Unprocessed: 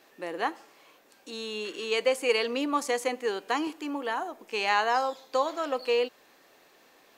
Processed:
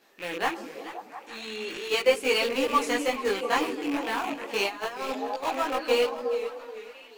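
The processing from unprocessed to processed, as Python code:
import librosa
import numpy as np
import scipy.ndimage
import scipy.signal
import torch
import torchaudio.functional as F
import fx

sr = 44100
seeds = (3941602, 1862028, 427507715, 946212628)

p1 = fx.rattle_buzz(x, sr, strikes_db=-51.0, level_db=-27.0)
p2 = np.where(np.abs(p1) >= 10.0 ** (-25.5 / 20.0), p1, 0.0)
p3 = p1 + F.gain(torch.from_numpy(p2), -3.5).numpy()
p4 = fx.transient(p3, sr, attack_db=-5, sustain_db=9, at=(0.51, 1.88), fade=0.02)
p5 = fx.echo_stepped(p4, sr, ms=175, hz=230.0, octaves=0.7, feedback_pct=70, wet_db=-4)
p6 = fx.over_compress(p5, sr, threshold_db=-27.0, ratio=-0.5, at=(4.24, 5.42), fade=0.02)
p7 = fx.chorus_voices(p6, sr, voices=4, hz=0.35, base_ms=19, depth_ms=4.6, mix_pct=55)
p8 = fx.echo_warbled(p7, sr, ms=432, feedback_pct=32, rate_hz=2.8, cents=138, wet_db=-14)
y = F.gain(torch.from_numpy(p8), 1.5).numpy()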